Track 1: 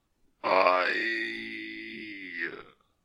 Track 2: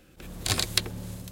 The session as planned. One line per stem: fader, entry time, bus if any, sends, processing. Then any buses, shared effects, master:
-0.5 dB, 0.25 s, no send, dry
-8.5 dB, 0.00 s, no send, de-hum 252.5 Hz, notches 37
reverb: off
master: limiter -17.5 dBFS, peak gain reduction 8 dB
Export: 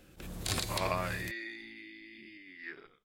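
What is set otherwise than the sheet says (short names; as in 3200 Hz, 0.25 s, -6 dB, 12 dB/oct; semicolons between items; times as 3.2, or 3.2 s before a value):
stem 1 -0.5 dB -> -11.0 dB; stem 2 -8.5 dB -> -2.0 dB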